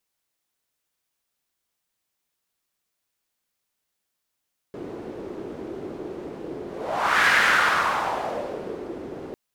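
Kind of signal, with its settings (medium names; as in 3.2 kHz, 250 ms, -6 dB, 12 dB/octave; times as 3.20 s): whoosh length 4.60 s, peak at 2.55 s, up 0.66 s, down 1.72 s, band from 370 Hz, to 1.7 kHz, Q 2.9, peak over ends 17 dB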